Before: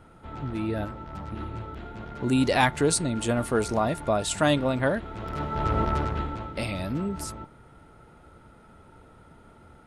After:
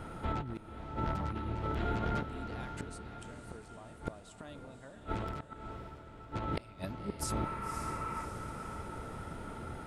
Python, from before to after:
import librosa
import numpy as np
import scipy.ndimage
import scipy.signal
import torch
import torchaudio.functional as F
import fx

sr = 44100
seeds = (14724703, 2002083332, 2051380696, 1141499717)

p1 = fx.spec_repair(x, sr, seeds[0], start_s=7.4, length_s=0.82, low_hz=890.0, high_hz=2900.0, source='before')
p2 = fx.gate_flip(p1, sr, shuts_db=-21.0, range_db=-36)
p3 = fx.over_compress(p2, sr, threshold_db=-40.0, ratio=-1.0)
p4 = p3 + fx.echo_diffused(p3, sr, ms=551, feedback_pct=54, wet_db=-8.5, dry=0)
y = p4 * librosa.db_to_amplitude(4.5)